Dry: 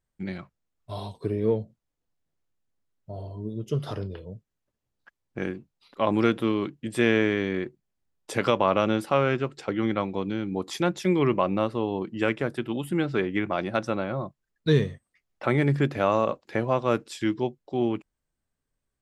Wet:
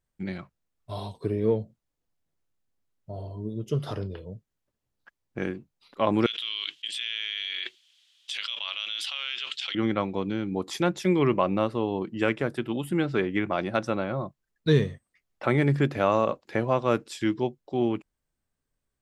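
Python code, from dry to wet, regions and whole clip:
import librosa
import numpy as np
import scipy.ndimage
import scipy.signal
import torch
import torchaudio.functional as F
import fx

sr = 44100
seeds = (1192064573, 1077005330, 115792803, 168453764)

y = fx.chain(x, sr, fx.ladder_bandpass(hz=3500.0, resonance_pct=70),
    fx.env_flatten(amount_pct=100), at=(6.26, 9.75))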